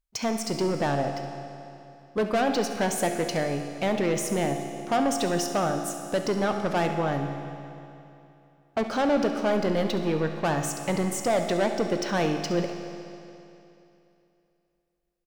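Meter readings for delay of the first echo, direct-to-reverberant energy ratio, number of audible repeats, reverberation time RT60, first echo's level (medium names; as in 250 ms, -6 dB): 69 ms, 5.0 dB, 1, 2.9 s, -14.0 dB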